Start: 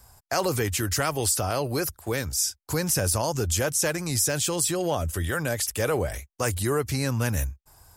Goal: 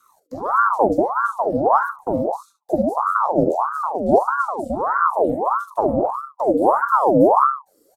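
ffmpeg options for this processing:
-filter_complex "[0:a]asettb=1/sr,asplit=3[a][b][c];[a]atrim=end=2.954[d];[b]atrim=start=2.95:end=4.09,asetpts=PTS-STARTPTS,afade=t=in:d=0.004:c=qsin,afade=t=out:st=1.136:d=0.004:c=qsin,aeval=exprs='if(lt(val(0),0),0.251*val(0),val(0))':c=same[e];[c]atrim=start=4.086[f];[d][e]acrossfade=d=0.004:c1=hsin:c2=qsin[g];[g][f]acrossfade=d=0.004:c1=qsin:c2=hsin,asettb=1/sr,asplit=3[h][i][j];[h]atrim=end=6.624[k];[i]atrim=start=6.62:end=7.28,asetpts=PTS-STARTPTS,afade=t=in:d=0.004:c=qsin,afade=t=out:st=0.656:d=0.004:c=qsin,aemphasis=mode=production:type=50kf[l];[j]atrim=start=7.276[m];[k][l]acrossfade=d=0.004:c1=hsin:c2=qsin[n];[n][m]acrossfade=d=0.004:c1=qsin:c2=hsin,asplit=2[o][p];[p]acompressor=threshold=-36dB:ratio=10,volume=0dB[q];[o][q]amix=inputs=2:normalize=0,aphaser=in_gain=1:out_gain=1:delay=2.5:decay=0.27:speed=1.2:type=sinusoidal,bandreject=f=50:t=h:w=6,bandreject=f=100:t=h:w=6,bandreject=f=150:t=h:w=6,bandreject=f=200:t=h:w=6,bandreject=f=250:t=h:w=6,bandreject=f=300:t=h:w=6,bandreject=f=350:t=h:w=6,bandreject=f=400:t=h:w=6,acrossover=split=430[r][s];[s]acompressor=threshold=-40dB:ratio=4[t];[r][t]amix=inputs=2:normalize=0,equalizer=f=125:t=o:w=1:g=8,equalizer=f=250:t=o:w=1:g=10,equalizer=f=500:t=o:w=1:g=-12,equalizer=f=1k:t=o:w=1:g=-5,equalizer=f=2k:t=o:w=1:g=-11,afwtdn=0.0631,bandreject=f=5.9k:w=17,aecho=1:1:43|71:0.251|0.2,aeval=exprs='val(0)*sin(2*PI*830*n/s+830*0.55/1.6*sin(2*PI*1.6*n/s))':c=same,volume=5.5dB"

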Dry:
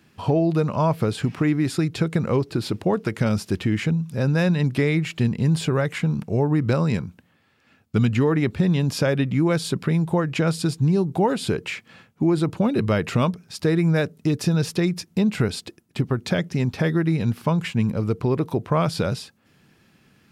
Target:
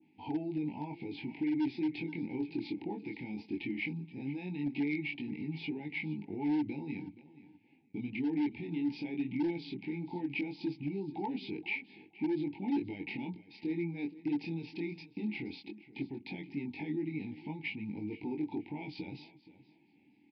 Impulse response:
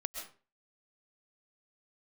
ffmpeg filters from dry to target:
-filter_complex "[0:a]acontrast=49,alimiter=limit=-14dB:level=0:latency=1:release=79,asplit=3[a][b][c];[a]bandpass=f=300:t=q:w=8,volume=0dB[d];[b]bandpass=f=870:t=q:w=8,volume=-6dB[e];[c]bandpass=f=2.24k:t=q:w=8,volume=-9dB[f];[d][e][f]amix=inputs=3:normalize=0,flanger=delay=19.5:depth=4.8:speed=0.17,aresample=11025,asoftclip=type=hard:threshold=-27.5dB,aresample=44100,asuperstop=centerf=1200:order=8:qfactor=1.7,asplit=2[g][h];[h]aecho=0:1:474|948:0.133|0.028[i];[g][i]amix=inputs=2:normalize=0,adynamicequalizer=threshold=0.002:dfrequency=1600:dqfactor=0.7:tfrequency=1600:tqfactor=0.7:attack=5:release=100:ratio=0.375:range=3:mode=boostabove:tftype=highshelf"

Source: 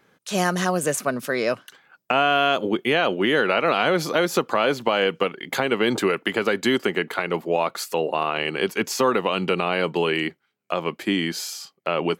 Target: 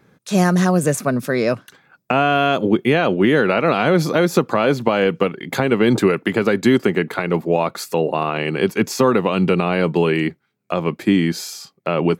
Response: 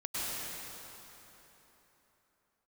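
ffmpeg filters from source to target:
-af "equalizer=f=100:w=0.37:g=12.5,bandreject=f=3k:w=11,volume=1dB"

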